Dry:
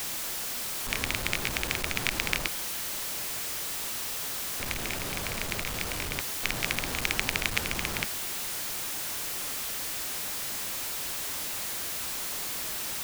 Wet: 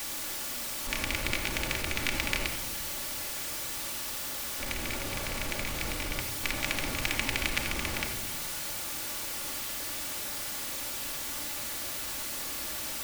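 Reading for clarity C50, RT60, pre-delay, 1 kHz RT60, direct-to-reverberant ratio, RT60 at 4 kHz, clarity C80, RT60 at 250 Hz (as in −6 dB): 6.5 dB, 1.1 s, 3 ms, 0.95 s, 0.5 dB, 0.65 s, 8.5 dB, 1.7 s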